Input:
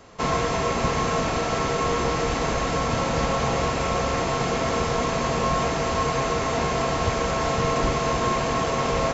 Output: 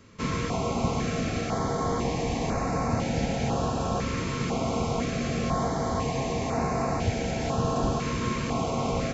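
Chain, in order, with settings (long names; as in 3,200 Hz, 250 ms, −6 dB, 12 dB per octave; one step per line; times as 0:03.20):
parametric band 100 Hz +7 dB 0.64 octaves
hollow resonant body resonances 220/760/2,300 Hz, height 7 dB, ringing for 25 ms
notch on a step sequencer 2 Hz 750–3,200 Hz
level −5.5 dB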